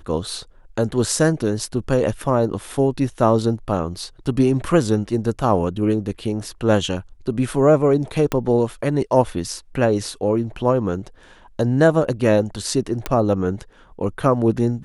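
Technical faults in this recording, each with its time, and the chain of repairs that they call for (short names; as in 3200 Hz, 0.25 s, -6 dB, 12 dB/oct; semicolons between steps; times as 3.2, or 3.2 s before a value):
8.32 pop -8 dBFS
13.06 pop -8 dBFS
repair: de-click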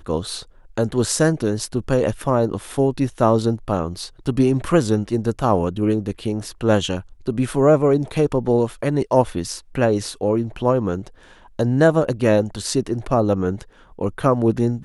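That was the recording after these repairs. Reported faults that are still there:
8.32 pop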